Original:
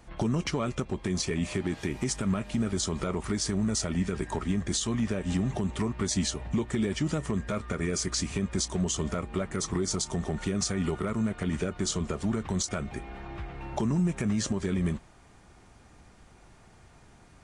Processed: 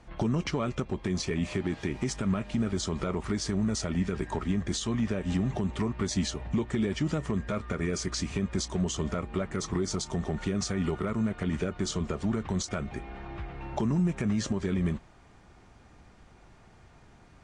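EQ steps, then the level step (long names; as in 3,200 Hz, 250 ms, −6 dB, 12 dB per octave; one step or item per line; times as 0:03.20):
high-frequency loss of the air 67 metres
0.0 dB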